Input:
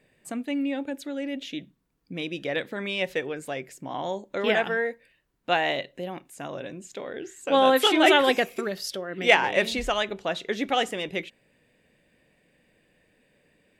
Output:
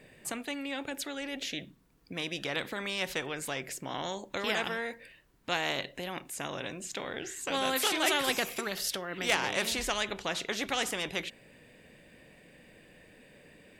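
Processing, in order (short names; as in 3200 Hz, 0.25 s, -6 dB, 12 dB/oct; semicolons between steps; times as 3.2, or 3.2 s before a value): spectral compressor 2:1; gain -8.5 dB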